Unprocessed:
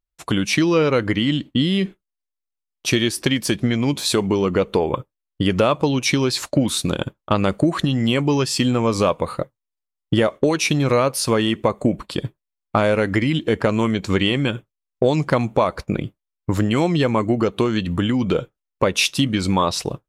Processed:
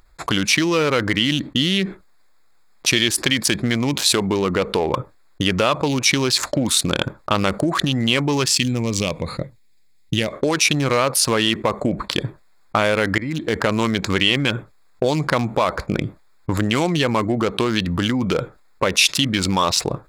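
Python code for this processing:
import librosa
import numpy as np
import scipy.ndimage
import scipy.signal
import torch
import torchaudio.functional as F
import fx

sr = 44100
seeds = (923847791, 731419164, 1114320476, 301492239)

y = fx.curve_eq(x, sr, hz=(170.0, 570.0, 1300.0, 2200.0), db=(0, -10, -18, -1), at=(8.55, 10.33))
y = fx.edit(y, sr, fx.fade_in_from(start_s=13.18, length_s=0.45, floor_db=-18.0), tone=tone)
y = fx.wiener(y, sr, points=15)
y = fx.tilt_shelf(y, sr, db=-6.5, hz=1200.0)
y = fx.env_flatten(y, sr, amount_pct=50)
y = y * librosa.db_to_amplitude(-1.5)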